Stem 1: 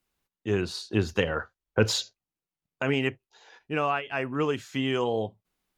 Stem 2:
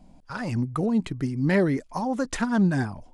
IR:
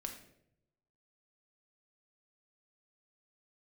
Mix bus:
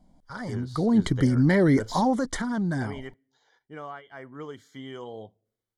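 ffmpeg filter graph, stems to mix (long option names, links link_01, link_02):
-filter_complex "[0:a]volume=-16.5dB,asplit=2[link_01][link_02];[link_02]volume=-24dB[link_03];[1:a]acontrast=47,alimiter=limit=-14.5dB:level=0:latency=1:release=22,volume=-2.5dB,afade=type=in:start_time=0.7:duration=0.31:silence=0.281838,afade=type=out:start_time=1.88:duration=0.55:silence=0.398107[link_04];[2:a]atrim=start_sample=2205[link_05];[link_03][link_05]afir=irnorm=-1:irlink=0[link_06];[link_01][link_04][link_06]amix=inputs=3:normalize=0,dynaudnorm=framelen=140:gausssize=3:maxgain=4dB,asuperstop=centerf=2600:order=8:qfactor=4.2"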